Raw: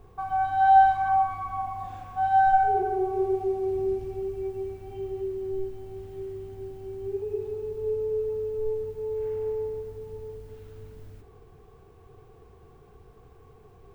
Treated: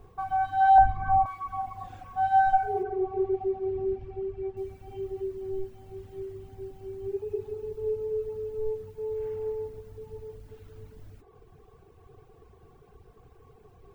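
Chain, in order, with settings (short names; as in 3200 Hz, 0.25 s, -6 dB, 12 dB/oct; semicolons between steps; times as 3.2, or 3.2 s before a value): 0.78–1.26 tilt -3.5 dB/oct; reverb removal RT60 0.81 s; 2.83–4.57 LPF 2800 Hz 12 dB/oct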